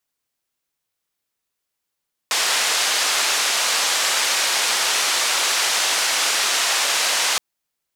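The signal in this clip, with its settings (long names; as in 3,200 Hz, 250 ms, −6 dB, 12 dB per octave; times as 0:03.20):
band-limited noise 620–6,800 Hz, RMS −20 dBFS 5.07 s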